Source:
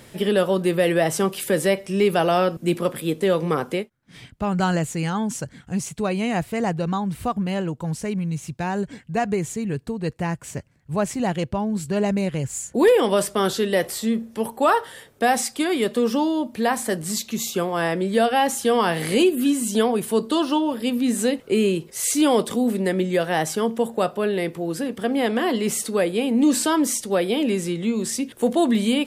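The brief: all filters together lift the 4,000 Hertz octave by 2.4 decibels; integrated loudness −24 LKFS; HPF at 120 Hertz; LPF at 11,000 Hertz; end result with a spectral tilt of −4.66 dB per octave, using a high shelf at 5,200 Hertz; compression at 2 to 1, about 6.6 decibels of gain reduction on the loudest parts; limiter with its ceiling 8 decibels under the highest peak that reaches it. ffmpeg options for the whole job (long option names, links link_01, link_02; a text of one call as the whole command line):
ffmpeg -i in.wav -af "highpass=120,lowpass=11000,equalizer=frequency=4000:width_type=o:gain=5.5,highshelf=frequency=5200:gain=-5.5,acompressor=threshold=-24dB:ratio=2,volume=5dB,alimiter=limit=-15dB:level=0:latency=1" out.wav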